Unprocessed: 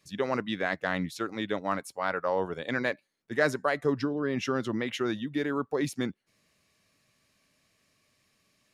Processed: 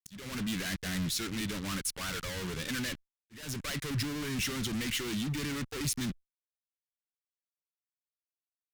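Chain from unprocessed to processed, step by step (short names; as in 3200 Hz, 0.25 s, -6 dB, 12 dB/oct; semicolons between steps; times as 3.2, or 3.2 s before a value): fuzz box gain 48 dB, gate -50 dBFS; passive tone stack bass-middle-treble 6-0-2; auto swell 0.366 s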